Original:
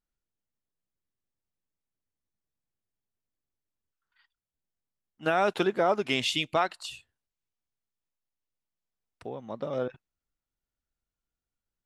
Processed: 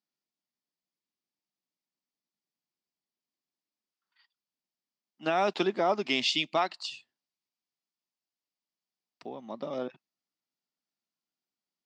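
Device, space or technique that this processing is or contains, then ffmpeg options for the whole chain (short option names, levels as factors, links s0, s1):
television speaker: -af "highpass=f=180:w=0.5412,highpass=f=180:w=1.3066,equalizer=f=480:t=q:w=4:g=-7,equalizer=f=1500:t=q:w=4:g=-7,equalizer=f=4800:t=q:w=4:g=7,lowpass=f=6600:w=0.5412,lowpass=f=6600:w=1.3066"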